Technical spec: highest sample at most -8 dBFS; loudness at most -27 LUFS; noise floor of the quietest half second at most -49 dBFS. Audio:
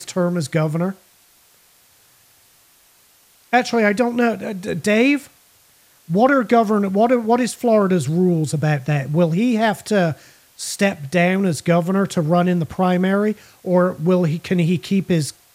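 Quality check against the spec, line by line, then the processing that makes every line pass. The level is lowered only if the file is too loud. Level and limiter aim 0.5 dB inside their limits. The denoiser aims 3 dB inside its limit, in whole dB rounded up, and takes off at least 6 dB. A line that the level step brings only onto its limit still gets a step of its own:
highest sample -2.5 dBFS: fail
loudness -18.5 LUFS: fail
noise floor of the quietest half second -54 dBFS: pass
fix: trim -9 dB

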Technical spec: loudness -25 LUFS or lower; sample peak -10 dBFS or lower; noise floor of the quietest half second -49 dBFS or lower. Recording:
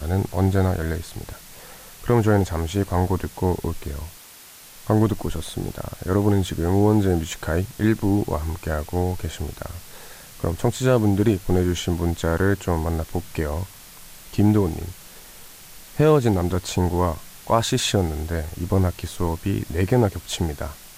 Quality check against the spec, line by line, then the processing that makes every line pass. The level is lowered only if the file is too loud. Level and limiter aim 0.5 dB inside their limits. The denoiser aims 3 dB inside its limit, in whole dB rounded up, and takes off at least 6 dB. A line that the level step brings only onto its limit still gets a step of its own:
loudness -23.0 LUFS: fail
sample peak -5.0 dBFS: fail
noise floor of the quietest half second -45 dBFS: fail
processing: noise reduction 6 dB, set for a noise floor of -45 dBFS; trim -2.5 dB; peak limiter -10.5 dBFS

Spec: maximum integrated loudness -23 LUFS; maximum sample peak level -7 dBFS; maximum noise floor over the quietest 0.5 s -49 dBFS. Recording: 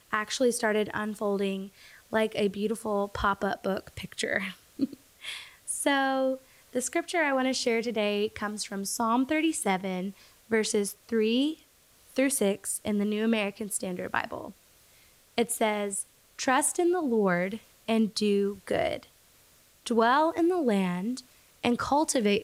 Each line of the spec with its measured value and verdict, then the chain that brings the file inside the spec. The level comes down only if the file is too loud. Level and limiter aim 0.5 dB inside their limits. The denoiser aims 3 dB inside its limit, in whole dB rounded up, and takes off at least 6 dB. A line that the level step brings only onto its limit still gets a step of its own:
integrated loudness -28.5 LUFS: pass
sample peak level -10.5 dBFS: pass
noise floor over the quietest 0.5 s -60 dBFS: pass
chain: none needed

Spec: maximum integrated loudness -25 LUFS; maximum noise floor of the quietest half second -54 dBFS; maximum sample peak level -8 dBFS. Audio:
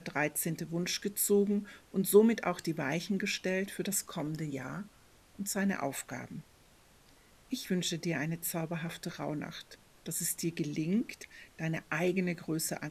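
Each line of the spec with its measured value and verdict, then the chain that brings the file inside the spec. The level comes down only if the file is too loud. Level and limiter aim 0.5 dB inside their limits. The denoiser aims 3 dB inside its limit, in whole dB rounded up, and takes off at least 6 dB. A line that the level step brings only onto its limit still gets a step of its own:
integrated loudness -33.5 LUFS: pass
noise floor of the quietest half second -62 dBFS: pass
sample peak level -12.0 dBFS: pass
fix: none needed

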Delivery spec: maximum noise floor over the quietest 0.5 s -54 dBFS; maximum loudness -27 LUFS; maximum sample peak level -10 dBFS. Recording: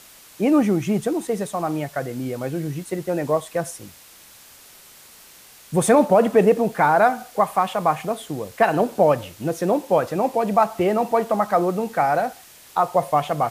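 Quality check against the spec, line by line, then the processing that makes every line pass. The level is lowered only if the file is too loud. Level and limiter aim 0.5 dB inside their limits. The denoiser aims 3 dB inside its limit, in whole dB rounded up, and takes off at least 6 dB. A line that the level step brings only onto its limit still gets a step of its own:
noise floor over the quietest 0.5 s -47 dBFS: fail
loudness -21.0 LUFS: fail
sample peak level -5.0 dBFS: fail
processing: noise reduction 6 dB, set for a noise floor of -47 dBFS; trim -6.5 dB

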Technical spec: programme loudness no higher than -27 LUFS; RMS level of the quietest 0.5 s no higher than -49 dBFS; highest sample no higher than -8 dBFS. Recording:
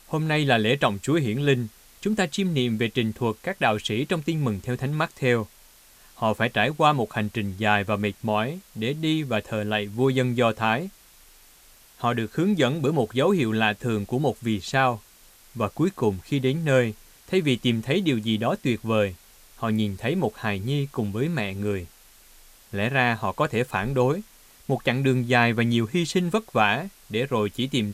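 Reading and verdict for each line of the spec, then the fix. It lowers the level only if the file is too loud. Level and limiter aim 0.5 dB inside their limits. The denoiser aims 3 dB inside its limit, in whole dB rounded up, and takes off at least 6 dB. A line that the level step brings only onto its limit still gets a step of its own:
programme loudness -24.5 LUFS: fail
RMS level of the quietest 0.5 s -53 dBFS: pass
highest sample -5.0 dBFS: fail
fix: trim -3 dB; peak limiter -8.5 dBFS

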